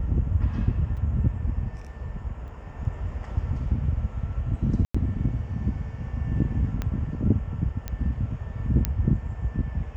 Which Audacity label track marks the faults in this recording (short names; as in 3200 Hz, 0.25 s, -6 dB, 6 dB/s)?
0.970000	0.980000	gap 5.1 ms
2.480000	2.480000	gap 2.8 ms
4.850000	4.950000	gap 95 ms
6.820000	6.820000	pop -16 dBFS
7.880000	7.880000	pop -17 dBFS
8.850000	8.850000	pop -7 dBFS